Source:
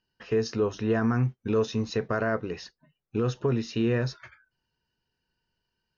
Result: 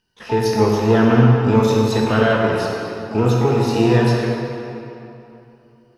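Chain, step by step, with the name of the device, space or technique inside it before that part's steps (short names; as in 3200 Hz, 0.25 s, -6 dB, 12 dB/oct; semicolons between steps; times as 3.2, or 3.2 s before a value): shimmer-style reverb (harmoniser +12 st -10 dB; reverb RT60 3.0 s, pre-delay 16 ms, DRR -2 dB); gain +7 dB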